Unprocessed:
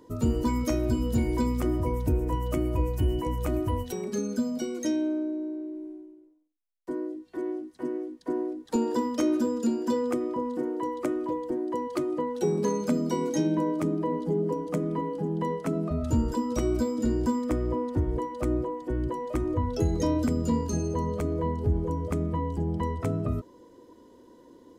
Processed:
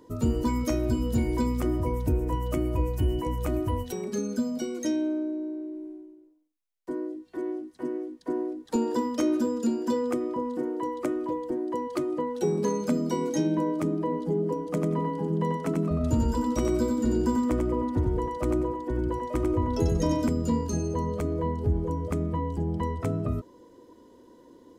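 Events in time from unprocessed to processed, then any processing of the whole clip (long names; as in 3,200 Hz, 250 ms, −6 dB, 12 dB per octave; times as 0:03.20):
0:14.67–0:20.29: repeating echo 93 ms, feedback 22%, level −4 dB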